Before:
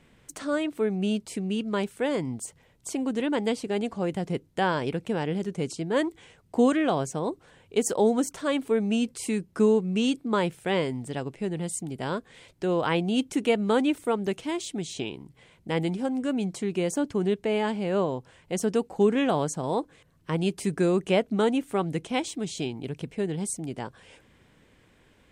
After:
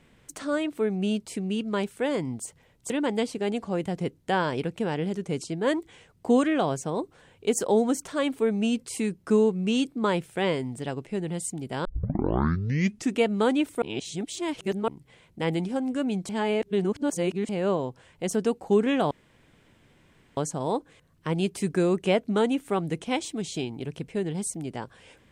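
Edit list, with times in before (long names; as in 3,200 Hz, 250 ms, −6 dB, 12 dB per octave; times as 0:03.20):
0:02.90–0:03.19: remove
0:12.14: tape start 1.36 s
0:14.11–0:15.17: reverse
0:16.58–0:17.78: reverse
0:19.40: splice in room tone 1.26 s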